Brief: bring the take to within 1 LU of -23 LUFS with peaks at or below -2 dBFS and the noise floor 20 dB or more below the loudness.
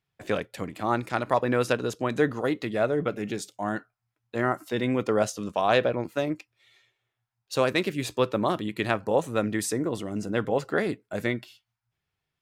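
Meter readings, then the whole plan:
loudness -27.5 LUFS; peak level -9.0 dBFS; loudness target -23.0 LUFS
-> trim +4.5 dB

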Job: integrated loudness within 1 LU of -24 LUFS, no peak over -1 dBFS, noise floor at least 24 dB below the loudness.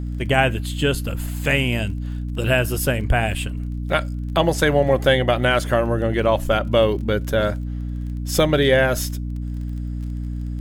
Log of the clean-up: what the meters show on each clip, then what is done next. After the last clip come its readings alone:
tick rate 24 per s; hum 60 Hz; highest harmonic 300 Hz; hum level -24 dBFS; loudness -21.0 LUFS; peak level -3.5 dBFS; loudness target -24.0 LUFS
-> de-click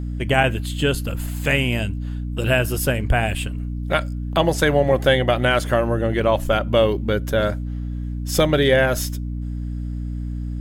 tick rate 0.75 per s; hum 60 Hz; highest harmonic 300 Hz; hum level -24 dBFS
-> de-hum 60 Hz, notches 5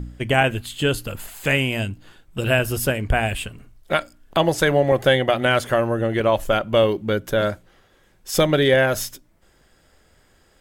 hum not found; loudness -20.5 LUFS; peak level -3.5 dBFS; loudness target -24.0 LUFS
-> trim -3.5 dB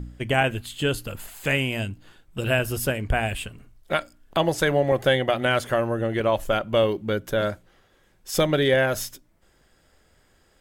loudness -24.0 LUFS; peak level -7.0 dBFS; noise floor -62 dBFS

